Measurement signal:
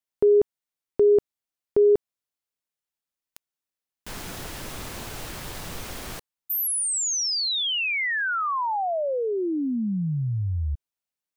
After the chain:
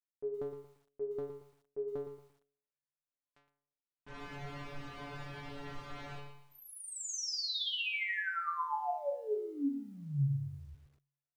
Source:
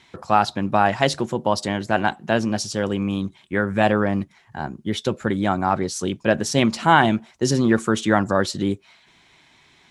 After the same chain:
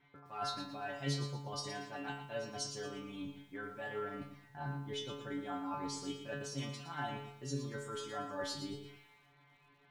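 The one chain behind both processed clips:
low-pass that shuts in the quiet parts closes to 1,800 Hz, open at −17.5 dBFS
high-shelf EQ 9,300 Hz −4.5 dB
reversed playback
downward compressor 16 to 1, threshold −27 dBFS
reversed playback
stiff-string resonator 140 Hz, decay 0.63 s, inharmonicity 0.002
feedback echo at a low word length 115 ms, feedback 35%, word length 12 bits, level −9 dB
level +6.5 dB

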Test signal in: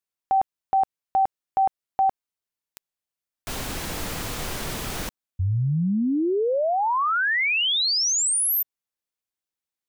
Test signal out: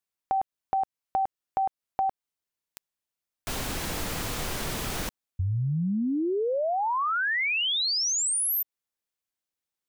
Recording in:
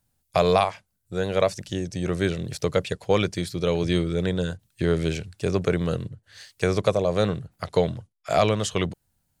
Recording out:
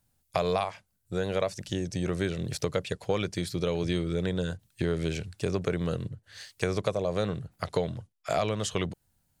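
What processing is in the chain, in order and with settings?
downward compressor 2.5 to 1, threshold −27 dBFS

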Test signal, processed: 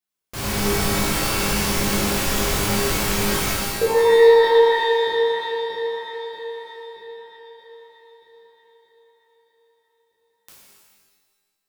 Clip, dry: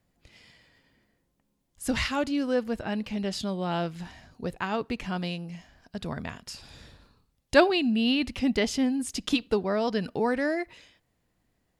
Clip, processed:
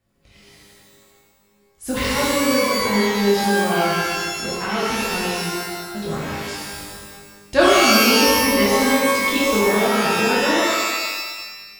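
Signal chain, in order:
feedback delay that plays each chunk backwards 104 ms, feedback 56%, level −9 dB
reverb with rising layers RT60 1.2 s, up +12 semitones, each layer −2 dB, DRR −6.5 dB
level −2 dB

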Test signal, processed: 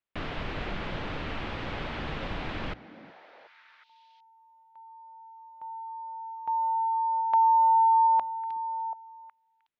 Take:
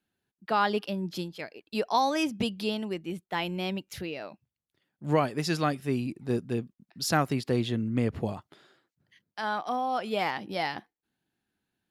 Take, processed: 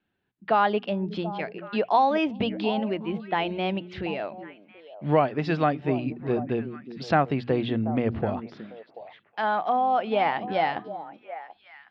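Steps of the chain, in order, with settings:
dynamic equaliser 690 Hz, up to +6 dB, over −43 dBFS, Q 1.9
low-pass filter 3,300 Hz 24 dB per octave
mains-hum notches 60/120/180/240 Hz
in parallel at +1 dB: downward compressor, threshold −31 dBFS
on the sum: echo through a band-pass that steps 367 ms, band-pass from 250 Hz, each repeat 1.4 octaves, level −9 dB
level −1 dB

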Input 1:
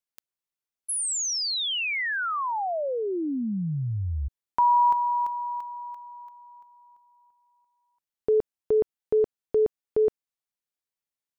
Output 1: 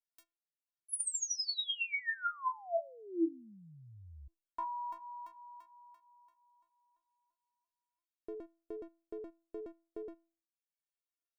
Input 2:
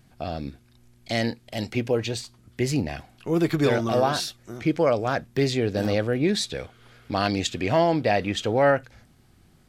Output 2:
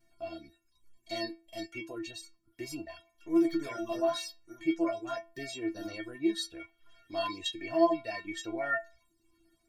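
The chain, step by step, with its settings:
stiff-string resonator 330 Hz, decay 0.42 s, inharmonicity 0.008
reverb reduction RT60 0.59 s
level +7 dB

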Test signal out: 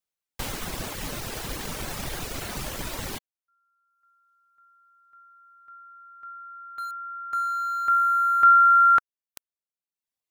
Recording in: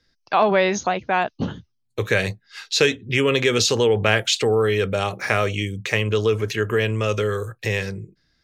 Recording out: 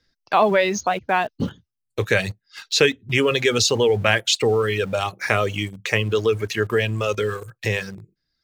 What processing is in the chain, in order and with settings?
reverb reduction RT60 0.88 s
in parallel at −9 dB: centre clipping without the shift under −31 dBFS
on the sum: level −1.5 dB

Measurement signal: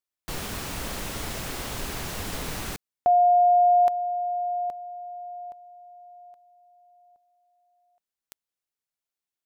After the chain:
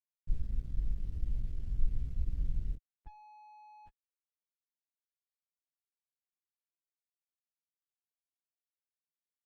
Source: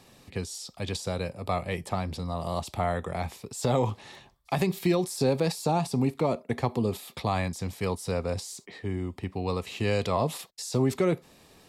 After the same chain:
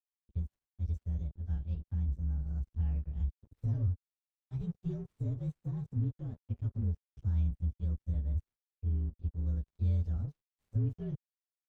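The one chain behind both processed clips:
partials spread apart or drawn together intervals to 117%
guitar amp tone stack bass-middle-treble 10-0-1
dead-zone distortion −58.5 dBFS
RIAA equalisation playback

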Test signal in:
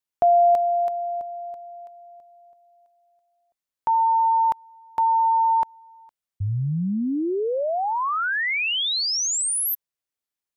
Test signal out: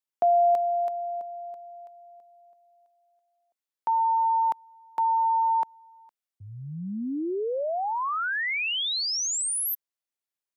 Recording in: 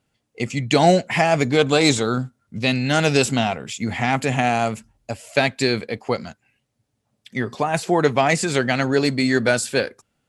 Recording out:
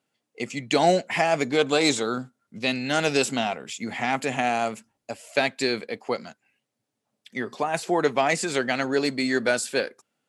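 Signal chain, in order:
high-pass filter 230 Hz 12 dB per octave
level −4 dB

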